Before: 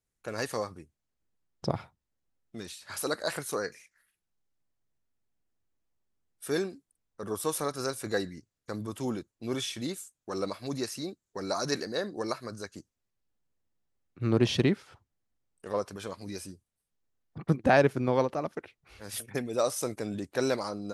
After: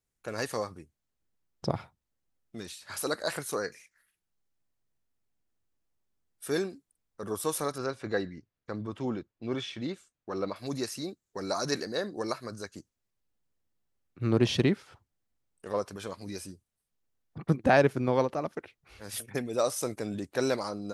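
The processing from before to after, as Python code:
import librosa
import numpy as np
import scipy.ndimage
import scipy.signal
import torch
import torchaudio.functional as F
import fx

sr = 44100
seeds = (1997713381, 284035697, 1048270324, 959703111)

y = fx.lowpass(x, sr, hz=3300.0, slope=12, at=(7.78, 10.56))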